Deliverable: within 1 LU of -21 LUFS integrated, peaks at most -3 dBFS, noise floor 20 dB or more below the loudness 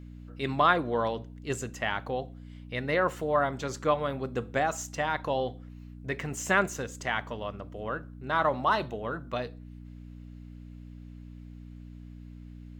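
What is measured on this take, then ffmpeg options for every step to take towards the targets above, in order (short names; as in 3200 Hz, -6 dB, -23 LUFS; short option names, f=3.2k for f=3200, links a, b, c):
hum 60 Hz; harmonics up to 300 Hz; hum level -43 dBFS; loudness -30.0 LUFS; peak -8.5 dBFS; loudness target -21.0 LUFS
-> -af "bandreject=f=60:t=h:w=4,bandreject=f=120:t=h:w=4,bandreject=f=180:t=h:w=4,bandreject=f=240:t=h:w=4,bandreject=f=300:t=h:w=4"
-af "volume=9dB,alimiter=limit=-3dB:level=0:latency=1"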